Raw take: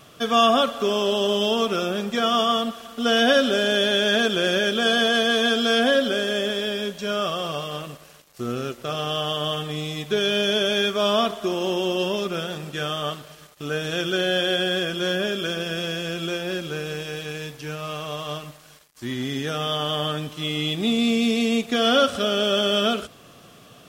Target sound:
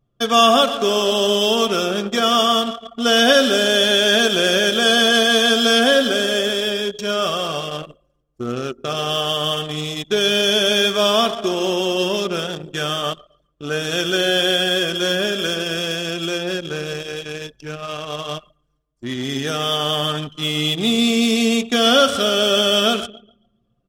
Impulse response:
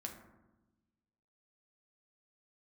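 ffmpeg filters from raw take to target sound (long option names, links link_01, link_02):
-filter_complex "[0:a]bass=frequency=250:gain=-2,treble=frequency=4000:gain=7,asplit=2[link_01][link_02];[link_02]aecho=0:1:139|278|417|556|695|834:0.211|0.127|0.0761|0.0457|0.0274|0.0164[link_03];[link_01][link_03]amix=inputs=2:normalize=0,anlmdn=39.8,volume=4dB"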